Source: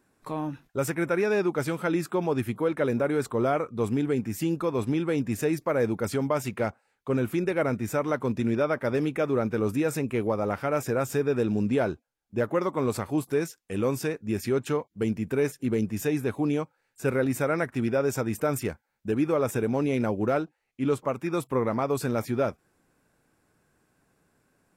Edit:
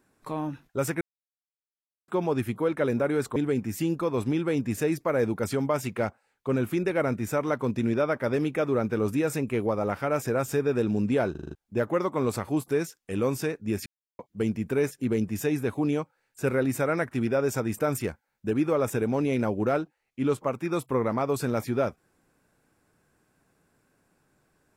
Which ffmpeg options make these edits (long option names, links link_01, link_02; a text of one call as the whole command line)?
ffmpeg -i in.wav -filter_complex "[0:a]asplit=12[link_01][link_02][link_03][link_04][link_05][link_06][link_07][link_08][link_09][link_10][link_11][link_12];[link_01]atrim=end=1.01,asetpts=PTS-STARTPTS,afade=type=out:start_time=1.006:duration=0.004:curve=hsin[link_13];[link_02]atrim=start=1.01:end=2.08,asetpts=PTS-STARTPTS,volume=0[link_14];[link_03]atrim=start=2.08:end=3.362,asetpts=PTS-STARTPTS,afade=type=in:duration=0.004:curve=hsin[link_15];[link_04]atrim=start=3.968:end=11.962[link_16];[link_05]atrim=start=11.918:end=11.962[link_17];[link_06]atrim=start=11.918:end=11.962[link_18];[link_07]atrim=start=11.918:end=11.962[link_19];[link_08]atrim=start=11.918:end=11.962[link_20];[link_09]atrim=start=11.918:end=11.962[link_21];[link_10]atrim=start=12.158:end=14.47,asetpts=PTS-STARTPTS,afade=type=out:start_time=2.308:duration=0.004:curve=hsin[link_22];[link_11]atrim=start=14.47:end=14.8,asetpts=PTS-STARTPTS,volume=0[link_23];[link_12]atrim=start=14.8,asetpts=PTS-STARTPTS,afade=type=in:duration=0.004:curve=hsin[link_24];[link_13][link_14][link_15]concat=n=3:v=0:a=1[link_25];[link_25][link_16]acrossfade=duration=0.004:curve1=hsin:curve2=hsin[link_26];[link_26][link_17]acrossfade=duration=0.004:curve1=hsin:curve2=hsin[link_27];[link_27][link_18]acrossfade=duration=0.004:curve1=hsin:curve2=hsin[link_28];[link_28][link_19]acrossfade=duration=0.004:curve1=hsin:curve2=hsin[link_29];[link_29][link_20]acrossfade=duration=0.004:curve1=hsin:curve2=hsin[link_30];[link_30][link_21]acrossfade=duration=0.004:curve1=hsin:curve2=hsin[link_31];[link_22][link_23][link_24]concat=n=3:v=0:a=1[link_32];[link_31][link_32]acrossfade=duration=0.004:curve1=hsin:curve2=hsin" out.wav